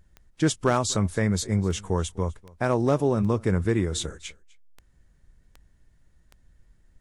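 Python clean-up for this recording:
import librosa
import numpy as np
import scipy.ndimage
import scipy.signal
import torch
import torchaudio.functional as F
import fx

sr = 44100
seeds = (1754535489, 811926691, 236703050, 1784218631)

y = fx.fix_declip(x, sr, threshold_db=-11.5)
y = fx.fix_declick_ar(y, sr, threshold=10.0)
y = fx.fix_echo_inverse(y, sr, delay_ms=251, level_db=-23.0)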